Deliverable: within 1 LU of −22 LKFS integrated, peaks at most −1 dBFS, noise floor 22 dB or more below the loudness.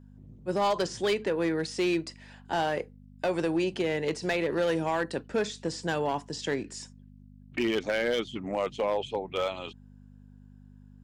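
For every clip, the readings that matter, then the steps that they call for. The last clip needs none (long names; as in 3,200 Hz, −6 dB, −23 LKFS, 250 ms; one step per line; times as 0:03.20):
share of clipped samples 0.9%; peaks flattened at −20.5 dBFS; mains hum 50 Hz; hum harmonics up to 250 Hz; level of the hum −49 dBFS; integrated loudness −30.0 LKFS; sample peak −20.5 dBFS; target loudness −22.0 LKFS
→ clipped peaks rebuilt −20.5 dBFS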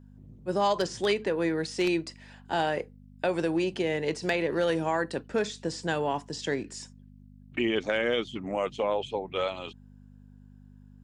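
share of clipped samples 0.0%; mains hum 50 Hz; hum harmonics up to 250 Hz; level of the hum −49 dBFS
→ hum removal 50 Hz, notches 5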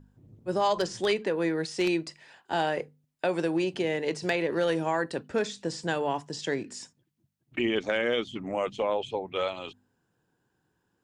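mains hum none found; integrated loudness −29.5 LKFS; sample peak −11.5 dBFS; target loudness −22.0 LKFS
→ level +7.5 dB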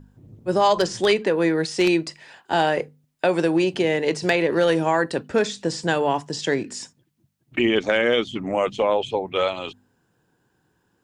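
integrated loudness −22.0 LKFS; sample peak −4.0 dBFS; background noise floor −69 dBFS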